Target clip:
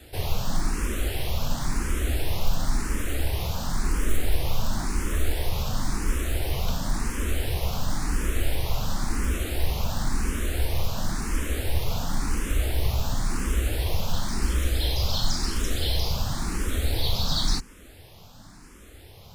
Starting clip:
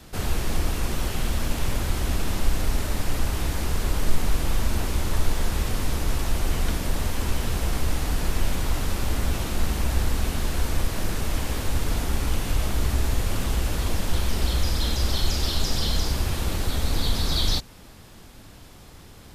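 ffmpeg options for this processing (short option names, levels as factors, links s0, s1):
-filter_complex "[0:a]acrusher=bits=7:mode=log:mix=0:aa=0.000001,asplit=2[s0][s1];[s1]afreqshift=0.95[s2];[s0][s2]amix=inputs=2:normalize=1,volume=1.19"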